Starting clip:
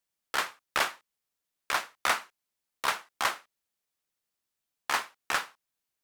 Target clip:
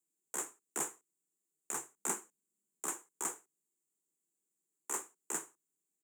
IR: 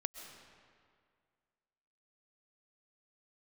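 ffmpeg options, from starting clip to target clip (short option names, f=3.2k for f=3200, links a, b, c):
-filter_complex "[0:a]firequalizer=gain_entry='entry(120,0);entry(190,5);entry(280,2);entry(440,-14);entry(720,-11);entry(1200,-20);entry(3000,-25);entry(4600,-29);entry(7000,7);entry(11000,-5)':delay=0.05:min_phase=1,afreqshift=140,asettb=1/sr,asplit=3[a][b][c];[a]atrim=end=1.984[d];[b]atrim=start=1.98:end=2.85,asetpts=PTS-STARTPTS,afade=t=in:d=0.004:c=qsin,afade=t=out:st=0.866:d=0.004:c=qsin,equalizer=f=210:w=3.5:g=12[e];[c]atrim=start=2.846[f];[d][e]acrossfade=d=0.004:c1=hsin:c2=qsin[g];[g][f]acrossfade=d=0.004:c1=qsin:c2=hsin,volume=1dB"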